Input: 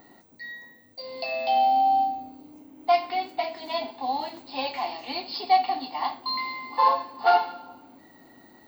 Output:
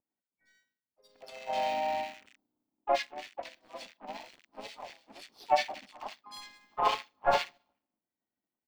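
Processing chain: rattling part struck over -47 dBFS, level -23 dBFS; power-law curve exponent 2; bands offset in time lows, highs 60 ms, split 1700 Hz; harmoniser -4 st -3 dB, +3 st -8 dB; gain -3 dB

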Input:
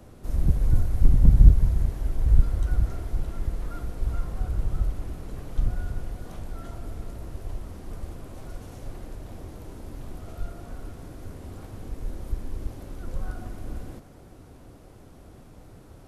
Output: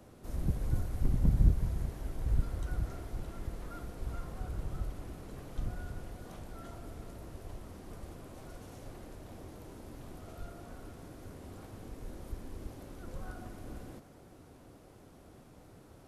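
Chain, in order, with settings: low shelf 79 Hz -10.5 dB; gain -4.5 dB

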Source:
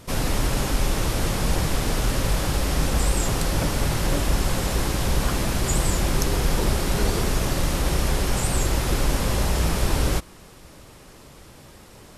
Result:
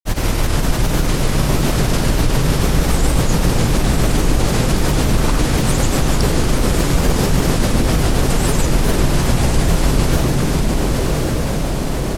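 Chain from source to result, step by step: octaver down 2 oct, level 0 dB; frequency-shifting echo 0.385 s, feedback 58%, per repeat +110 Hz, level -8 dB; grains, pitch spread up and down by 3 st; tremolo 7.2 Hz, depth 50%; diffused feedback echo 1.085 s, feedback 46%, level -5.5 dB; fast leveller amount 50%; gain +3.5 dB

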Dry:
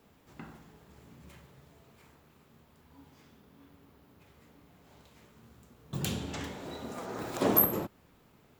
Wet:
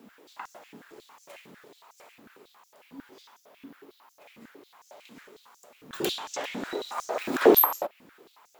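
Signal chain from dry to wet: dynamic EQ 7600 Hz, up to -6 dB, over -53 dBFS, Q 0.75; stepped high-pass 11 Hz 240–6100 Hz; gain +5.5 dB

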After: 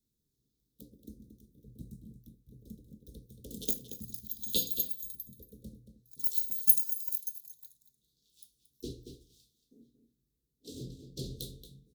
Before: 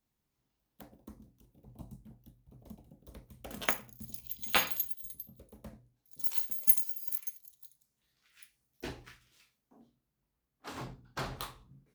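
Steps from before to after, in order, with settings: Chebyshev band-stop 470–3600 Hz, order 4; outdoor echo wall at 39 m, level -9 dB; gain +2 dB

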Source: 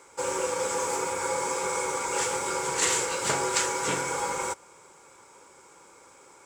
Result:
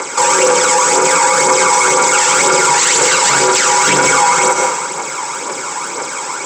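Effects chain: Chebyshev band-pass 140–8000 Hz, order 5; low shelf 480 Hz -8.5 dB; compressor, threshold -34 dBFS, peak gain reduction 12 dB; phaser 2 Hz, delay 1.2 ms, feedback 53%; reverb RT60 1.1 s, pre-delay 0.103 s, DRR 9.5 dB; maximiser +33 dB; gain -1 dB

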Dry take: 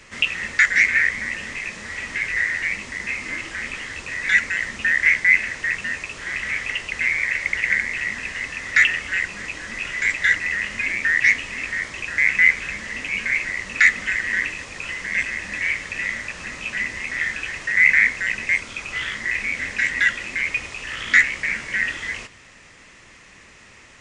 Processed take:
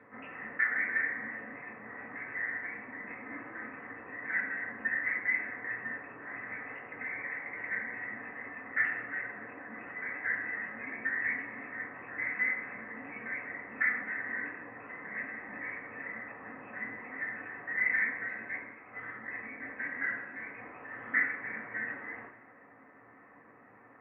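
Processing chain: Bessel low-pass 880 Hz, order 8; 18.28–20.58 expander -37 dBFS; HPF 510 Hz 6 dB/oct; upward compressor, threshold -52 dBFS; reverb RT60 1.0 s, pre-delay 3 ms, DRR -6.5 dB; gain -4.5 dB

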